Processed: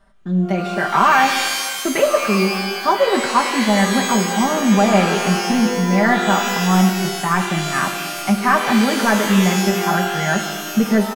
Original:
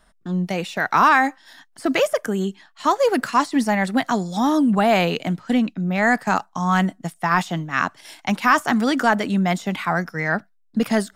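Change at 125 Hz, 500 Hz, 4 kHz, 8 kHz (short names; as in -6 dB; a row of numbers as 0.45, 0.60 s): +5.5, +4.0, +9.0, +12.5 dB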